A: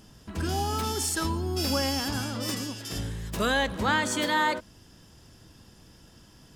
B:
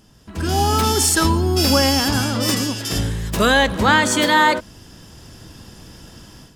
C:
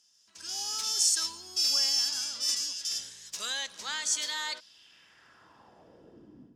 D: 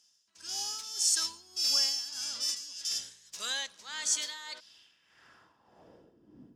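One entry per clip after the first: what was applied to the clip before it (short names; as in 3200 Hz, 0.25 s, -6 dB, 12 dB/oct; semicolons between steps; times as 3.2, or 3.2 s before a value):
AGC gain up to 12.5 dB
band-pass sweep 5900 Hz -> 270 Hz, 4.43–6.38; gain -2.5 dB
tremolo 1.7 Hz, depth 72%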